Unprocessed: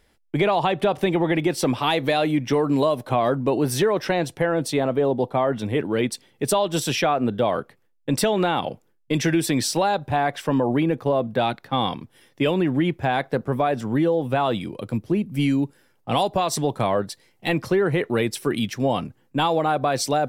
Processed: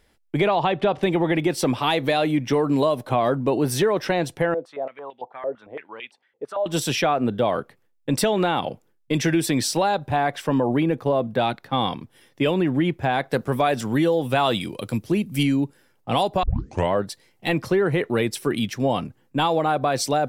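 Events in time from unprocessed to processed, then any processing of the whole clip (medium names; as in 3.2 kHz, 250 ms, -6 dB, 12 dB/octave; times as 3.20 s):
0.48–1.03 s: low-pass 4.9 kHz
4.54–6.66 s: step-sequenced band-pass 8.9 Hz 500–2700 Hz
13.31–15.43 s: treble shelf 2.3 kHz +11 dB
16.43 s: tape start 0.49 s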